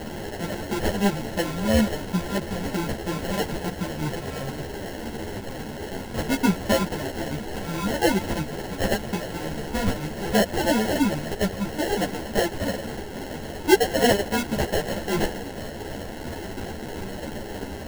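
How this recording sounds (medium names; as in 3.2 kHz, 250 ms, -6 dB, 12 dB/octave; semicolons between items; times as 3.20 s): a quantiser's noise floor 6-bit, dither triangular; phasing stages 2, 3 Hz, lowest notch 250–4000 Hz; aliases and images of a low sample rate 1.2 kHz, jitter 0%; a shimmering, thickened sound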